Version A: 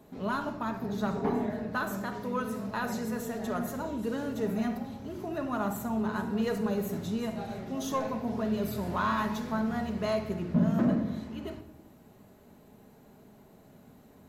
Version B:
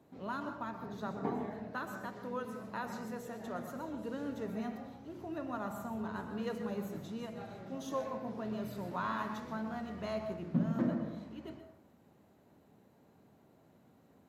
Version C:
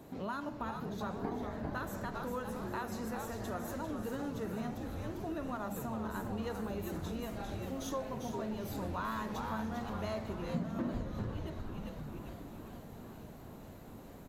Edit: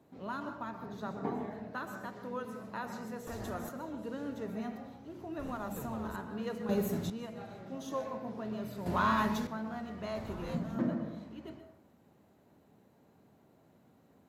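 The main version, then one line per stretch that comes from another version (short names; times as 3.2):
B
3.27–3.69 from C
5.39–6.16 from C
6.69–7.1 from A
8.86–9.47 from A
10.15–10.75 from C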